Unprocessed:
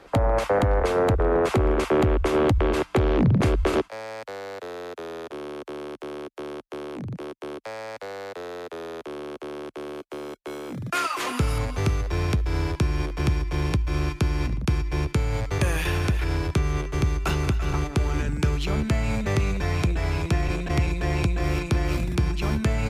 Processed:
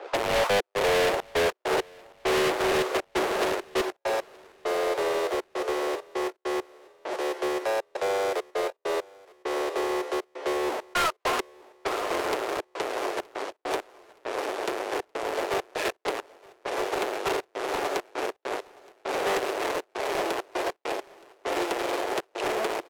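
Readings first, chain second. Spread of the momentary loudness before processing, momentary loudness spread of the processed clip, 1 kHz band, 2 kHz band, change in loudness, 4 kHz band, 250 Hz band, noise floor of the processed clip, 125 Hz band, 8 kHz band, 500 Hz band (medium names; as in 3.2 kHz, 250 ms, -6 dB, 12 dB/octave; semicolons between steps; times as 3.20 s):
14 LU, 9 LU, +2.0 dB, +1.0 dB, -3.5 dB, +2.5 dB, -7.5 dB, -67 dBFS, -25.5 dB, +1.0 dB, +0.5 dB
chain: square wave that keeps the level; peaking EQ 640 Hz +7 dB 1 oct; valve stage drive 21 dB, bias 0.4; treble shelf 6.9 kHz -6.5 dB; echo that smears into a reverb 774 ms, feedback 41%, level -9 dB; peak limiter -18 dBFS, peak gain reduction 4.5 dB; trance gate "xxxx.xxx.x.x...x" 100 bpm -60 dB; Chebyshev high-pass 370 Hz, order 4; sine folder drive 10 dB, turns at -13 dBFS; level-controlled noise filter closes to 2.9 kHz, open at -16.5 dBFS; feedback delay 921 ms, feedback 46%, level -23.5 dB; upward expansion 1.5:1, over -21 dBFS; trim -6.5 dB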